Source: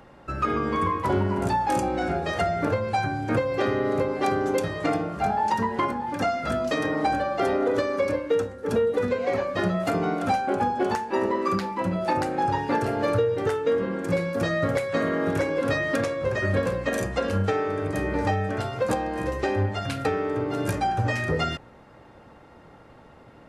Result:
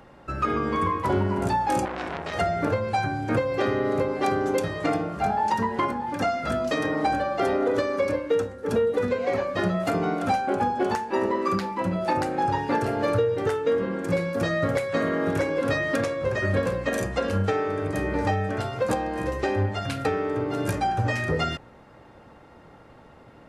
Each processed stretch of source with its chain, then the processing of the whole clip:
0:01.85–0:02.34: high-pass filter 120 Hz 6 dB per octave + low-shelf EQ 160 Hz +7 dB + saturating transformer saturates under 1,900 Hz
whole clip: no processing

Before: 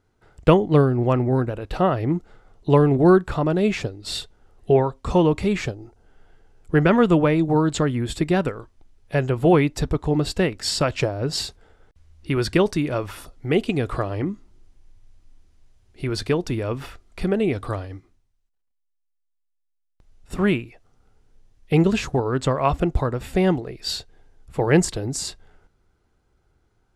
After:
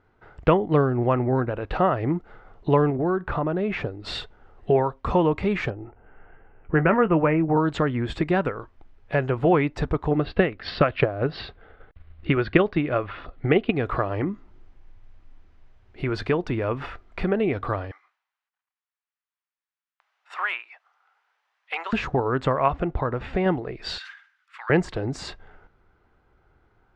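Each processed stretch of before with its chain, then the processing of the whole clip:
0:02.90–0:04.04: low-pass filter 2,500 Hz 6 dB per octave + downward compressor 3 to 1, threshold −21 dBFS
0:05.70–0:07.57: Butterworth low-pass 2,900 Hz 72 dB per octave + double-tracking delay 19 ms −12.5 dB
0:10.11–0:13.76: Butterworth low-pass 4,300 Hz + notch filter 920 Hz, Q 6.7 + transient designer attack +7 dB, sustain −1 dB
0:17.91–0:21.93: high-pass filter 880 Hz 24 dB per octave + gain into a clipping stage and back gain 20 dB
0:22.68–0:23.46: low-pass filter 5,400 Hz + downward compressor 1.5 to 1, threshold −23 dBFS
0:23.98–0:24.70: Butterworth high-pass 1,300 Hz + level that may fall only so fast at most 120 dB per second
whole clip: low-pass filter 1,900 Hz 12 dB per octave; tilt shelving filter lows −4.5 dB, about 650 Hz; downward compressor 1.5 to 1, threshold −36 dBFS; level +6.5 dB

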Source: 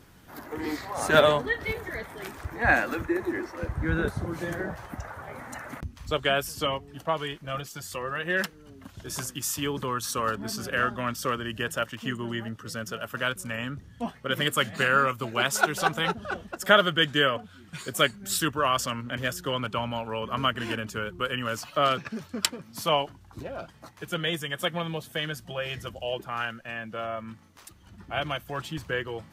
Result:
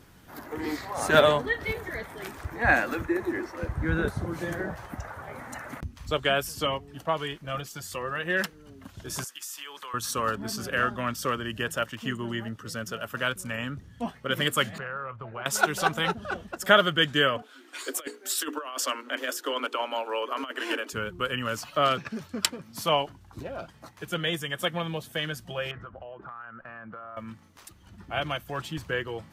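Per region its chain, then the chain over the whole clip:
0:09.24–0:09.94: high-pass filter 1,100 Hz + downward compressor, threshold −35 dBFS
0:14.78–0:15.46: low-pass filter 1,300 Hz + downward compressor 5 to 1, threshold −30 dBFS + parametric band 280 Hz −14 dB 0.84 octaves
0:17.42–0:20.93: Butterworth high-pass 260 Hz 96 dB per octave + mains-hum notches 60/120/180/240/300/360/420/480 Hz + compressor whose output falls as the input rises −29 dBFS, ratio −0.5
0:25.71–0:27.17: low-pass with resonance 1,300 Hz, resonance Q 3.5 + downward compressor 12 to 1, threshold −38 dBFS
whole clip: no processing

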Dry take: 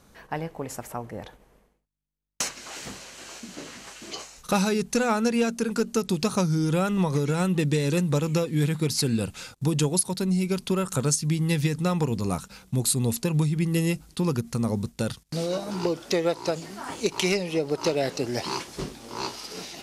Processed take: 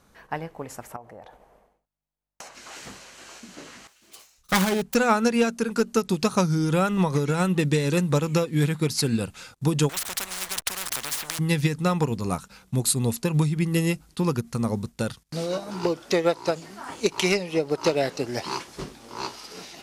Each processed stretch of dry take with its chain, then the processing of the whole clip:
0:00.96–0:02.55: parametric band 700 Hz +12 dB 1.1 octaves + downward compressor 2.5 to 1, threshold −42 dBFS
0:03.87–0:04.95: phase distortion by the signal itself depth 0.37 ms + multiband upward and downward expander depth 70%
0:09.89–0:11.39: parametric band 8,500 Hz +8 dB 1.2 octaves + slack as between gear wheels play −35 dBFS + every bin compressed towards the loudest bin 10 to 1
whole clip: parametric band 1,300 Hz +3.5 dB 1.8 octaves; expander for the loud parts 1.5 to 1, over −32 dBFS; level +2.5 dB

